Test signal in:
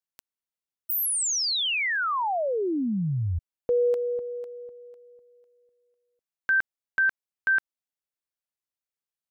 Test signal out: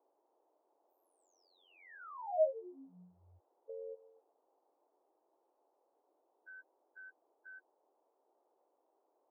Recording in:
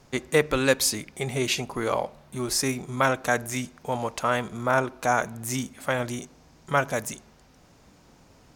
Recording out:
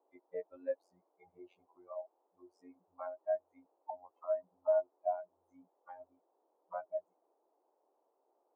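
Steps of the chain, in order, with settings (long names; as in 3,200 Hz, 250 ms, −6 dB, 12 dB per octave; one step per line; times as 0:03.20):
spectral dynamics exaggerated over time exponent 3
high shelf with overshoot 2,300 Hz −12 dB, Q 1.5
in parallel at 0 dB: downward compressor, threshold −33 dBFS
on the sum: phases set to zero 89.9 Hz
envelope filter 630–1,300 Hz, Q 13, down, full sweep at −31.5 dBFS
noise in a band 320–920 Hz −79 dBFS
level +1 dB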